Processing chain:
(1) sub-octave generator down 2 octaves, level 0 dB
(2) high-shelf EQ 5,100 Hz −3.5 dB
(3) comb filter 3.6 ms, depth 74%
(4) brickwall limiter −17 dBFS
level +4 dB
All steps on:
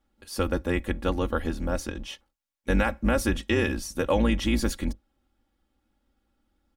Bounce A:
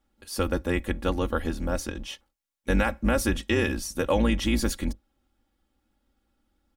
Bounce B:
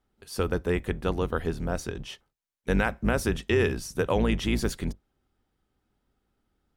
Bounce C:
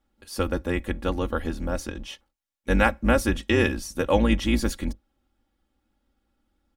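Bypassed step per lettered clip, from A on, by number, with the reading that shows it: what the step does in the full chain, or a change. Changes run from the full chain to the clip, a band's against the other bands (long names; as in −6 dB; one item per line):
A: 2, 8 kHz band +2.5 dB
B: 3, 125 Hz band +2.0 dB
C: 4, change in crest factor +6.0 dB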